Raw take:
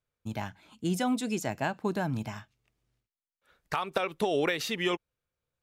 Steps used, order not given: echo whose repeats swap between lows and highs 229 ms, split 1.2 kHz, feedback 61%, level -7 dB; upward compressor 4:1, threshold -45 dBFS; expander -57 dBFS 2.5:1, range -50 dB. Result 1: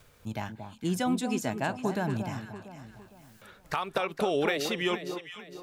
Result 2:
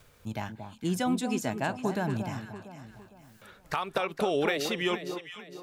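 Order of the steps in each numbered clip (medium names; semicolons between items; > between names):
upward compressor > echo whose repeats swap between lows and highs > expander; upward compressor > expander > echo whose repeats swap between lows and highs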